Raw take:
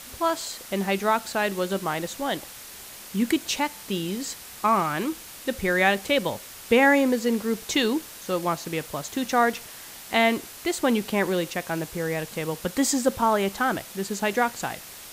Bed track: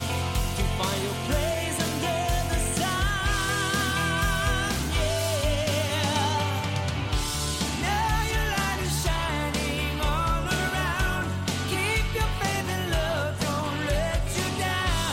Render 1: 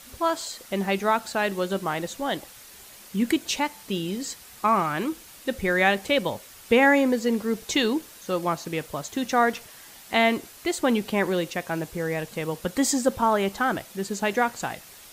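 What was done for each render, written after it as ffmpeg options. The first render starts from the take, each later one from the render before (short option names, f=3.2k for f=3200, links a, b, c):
-af "afftdn=nr=6:nf=-43"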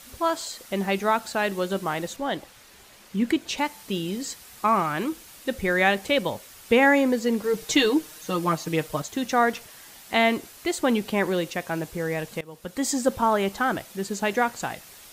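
-filter_complex "[0:a]asettb=1/sr,asplit=3[a][b][c];[a]atrim=end=2.164[d];[b]atrim=start=2.16:end=3.58,asetpts=PTS-STARTPTS,afade=t=in:d=0.004:c=qsin,afade=t=out:st=1.416:d=0.004:c=qsin,highshelf=f=6.1k:g=-10[e];[c]atrim=start=3.576[f];[d][e]acrossfade=d=0.004:c1=hsin:c2=qsin[g];[g][f]acrossfade=d=0.004:c1=qsin:c2=hsin,asettb=1/sr,asplit=3[h][i][j];[h]atrim=end=7.434[k];[i]atrim=start=7.43:end=9.02,asetpts=PTS-STARTPTS,afade=t=in:d=0.004:c=qsin,afade=t=out:st=1.586:d=0.004:c=qsin,aecho=1:1:6.5:0.86,atrim=end_sample=70119[l];[j]atrim=start=9.016[m];[k][l]acrossfade=d=0.004:c1=hsin:c2=qsin[n];[n][m]acrossfade=d=0.004:c1=qsin:c2=hsin,asplit=2[o][p];[o]atrim=end=12.41,asetpts=PTS-STARTPTS,afade=t=out:st=12.406:d=0.004:c=hsin:silence=0.0944061[q];[p]atrim=start=12.41,asetpts=PTS-STARTPTS,afade=t=in:d=0.67:silence=0.0944061[r];[q][r]concat=n=2:v=0:a=1"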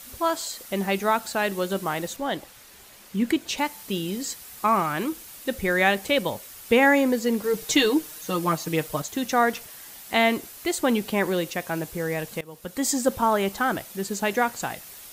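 -af "highshelf=f=11k:g=10"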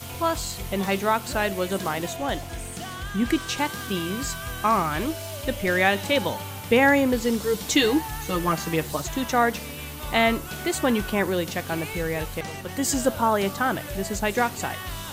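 -filter_complex "[1:a]volume=-9dB[a];[0:a][a]amix=inputs=2:normalize=0"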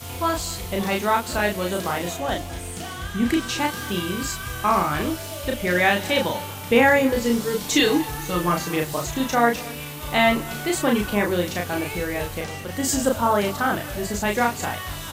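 -filter_complex "[0:a]asplit=2[a][b];[b]adelay=34,volume=-2.5dB[c];[a][c]amix=inputs=2:normalize=0,aecho=1:1:231:0.0944"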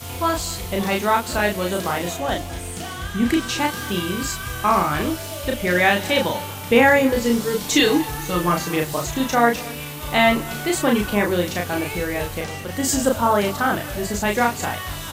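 -af "volume=2dB"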